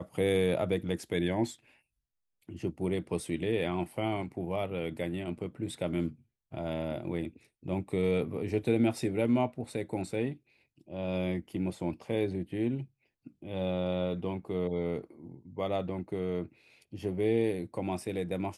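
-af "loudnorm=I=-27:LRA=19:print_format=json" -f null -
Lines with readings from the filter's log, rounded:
"input_i" : "-33.0",
"input_tp" : "-15.5",
"input_lra" : "4.0",
"input_thresh" : "-43.5",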